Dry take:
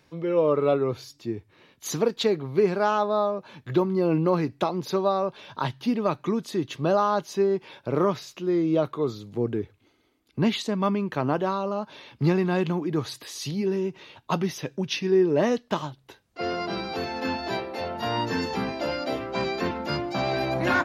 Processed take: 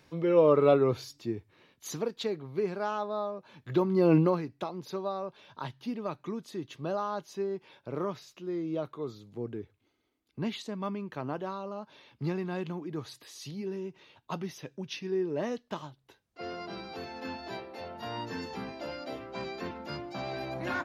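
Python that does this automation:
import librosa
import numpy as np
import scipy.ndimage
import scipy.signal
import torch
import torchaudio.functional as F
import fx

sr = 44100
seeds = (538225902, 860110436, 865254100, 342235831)

y = fx.gain(x, sr, db=fx.line((0.95, 0.0), (2.09, -9.5), (3.45, -9.5), (4.18, 2.0), (4.43, -10.5)))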